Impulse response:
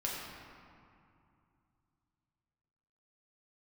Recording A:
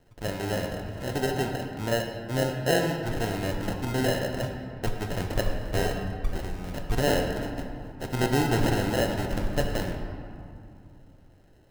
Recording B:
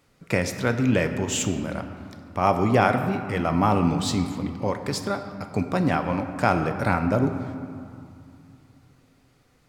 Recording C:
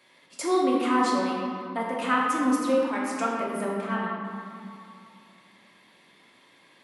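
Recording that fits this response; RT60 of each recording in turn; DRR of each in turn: C; 2.6, 2.6, 2.5 s; 2.5, 6.5, -4.5 dB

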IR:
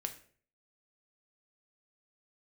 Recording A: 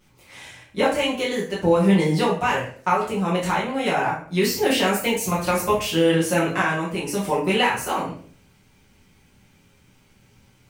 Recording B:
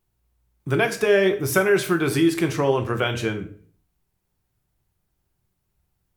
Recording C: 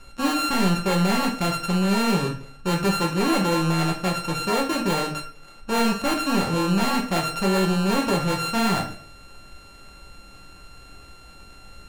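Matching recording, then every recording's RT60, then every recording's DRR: B; 0.50, 0.50, 0.50 s; -8.0, 5.5, 1.0 dB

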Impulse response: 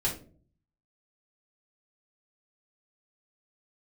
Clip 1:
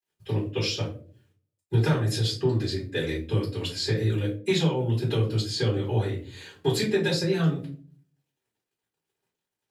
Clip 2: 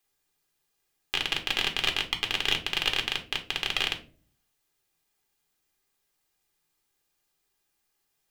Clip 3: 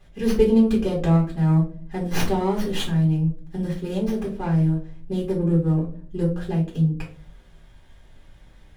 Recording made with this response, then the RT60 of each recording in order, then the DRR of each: 3; 0.45, 0.45, 0.45 s; -12.5, 3.5, -5.5 dB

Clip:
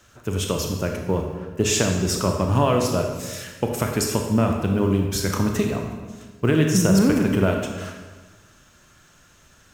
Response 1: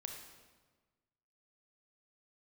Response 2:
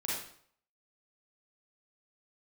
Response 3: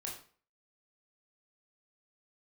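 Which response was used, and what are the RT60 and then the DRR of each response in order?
1; 1.4, 0.60, 0.45 s; 2.5, -6.5, -2.5 dB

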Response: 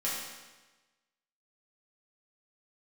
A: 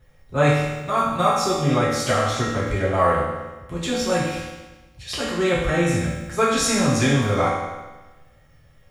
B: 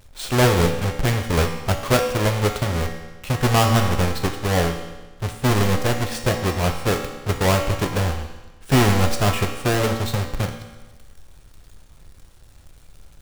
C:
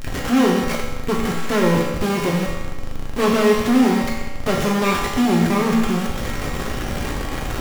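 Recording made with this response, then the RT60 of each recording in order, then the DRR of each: A; 1.2, 1.2, 1.2 s; -8.0, 3.0, -4.0 dB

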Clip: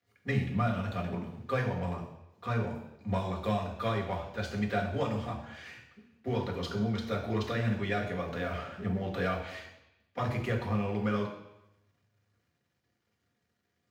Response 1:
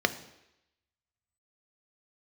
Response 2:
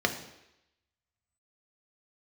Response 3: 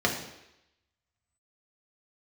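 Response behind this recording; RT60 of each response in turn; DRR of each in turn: 3; 0.85, 0.85, 0.85 s; 9.5, 4.0, -1.0 dB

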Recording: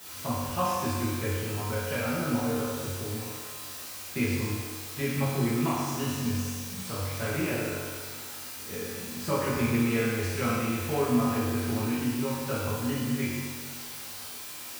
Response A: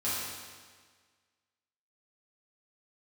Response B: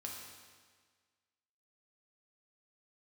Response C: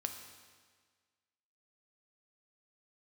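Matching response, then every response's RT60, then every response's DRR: A; 1.6, 1.6, 1.6 s; -11.0, -1.5, 5.0 dB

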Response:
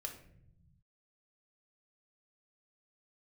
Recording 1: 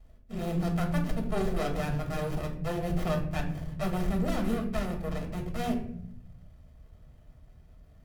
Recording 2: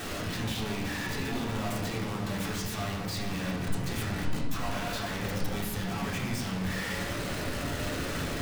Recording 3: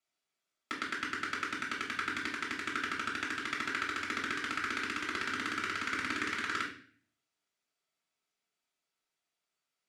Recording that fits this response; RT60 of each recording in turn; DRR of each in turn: 1; 0.70, 1.3, 0.45 s; 2.0, -5.0, -3.0 dB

